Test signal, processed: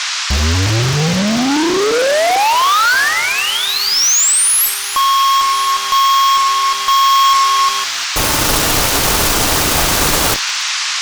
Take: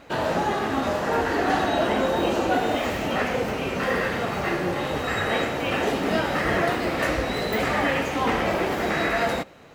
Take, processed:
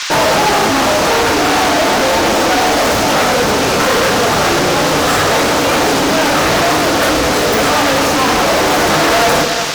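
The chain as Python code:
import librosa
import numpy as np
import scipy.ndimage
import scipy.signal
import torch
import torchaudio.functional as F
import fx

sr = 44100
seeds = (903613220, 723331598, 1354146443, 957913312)

y = fx.band_shelf(x, sr, hz=3000.0, db=-11.5, octaves=1.7)
y = fx.echo_feedback(y, sr, ms=355, feedback_pct=41, wet_db=-16)
y = fx.dmg_buzz(y, sr, base_hz=400.0, harmonics=34, level_db=-54.0, tilt_db=-3, odd_only=False)
y = fx.rev_fdn(y, sr, rt60_s=0.55, lf_ratio=1.25, hf_ratio=1.0, size_ms=20.0, drr_db=8.0)
y = fx.fuzz(y, sr, gain_db=35.0, gate_db=-40.0)
y = fx.dmg_noise_band(y, sr, seeds[0], low_hz=960.0, high_hz=6400.0, level_db=-26.0)
y = fx.rider(y, sr, range_db=4, speed_s=2.0)
y = fx.low_shelf(y, sr, hz=380.0, db=-6.0)
y = y * 10.0 ** (4.0 / 20.0)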